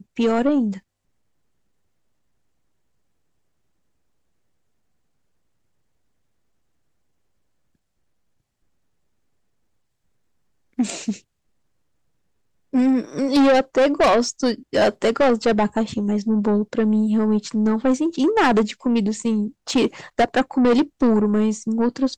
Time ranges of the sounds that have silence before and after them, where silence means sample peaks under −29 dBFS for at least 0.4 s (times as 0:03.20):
0:10.79–0:11.14